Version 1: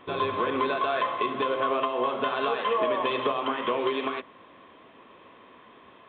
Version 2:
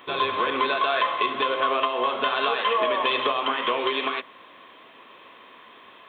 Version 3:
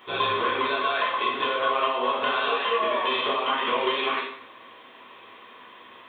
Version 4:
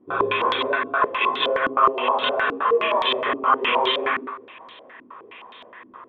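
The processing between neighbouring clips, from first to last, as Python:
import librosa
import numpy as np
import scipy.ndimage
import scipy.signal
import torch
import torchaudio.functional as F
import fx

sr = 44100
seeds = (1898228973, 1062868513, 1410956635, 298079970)

y1 = fx.tilt_eq(x, sr, slope=3.0)
y1 = F.gain(torch.from_numpy(y1), 3.5).numpy()
y2 = fx.rider(y1, sr, range_db=10, speed_s=0.5)
y2 = fx.rev_plate(y2, sr, seeds[0], rt60_s=0.62, hf_ratio=0.85, predelay_ms=0, drr_db=-4.5)
y2 = F.gain(torch.from_numpy(y2), -6.0).numpy()
y3 = fx.filter_held_lowpass(y2, sr, hz=9.6, low_hz=290.0, high_hz=3800.0)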